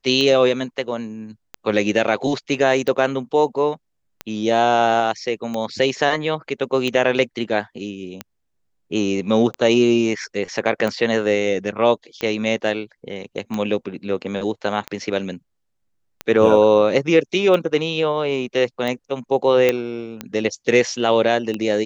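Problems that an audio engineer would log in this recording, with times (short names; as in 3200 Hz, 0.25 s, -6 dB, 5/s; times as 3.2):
tick 45 rpm -12 dBFS
19.69 pop -4 dBFS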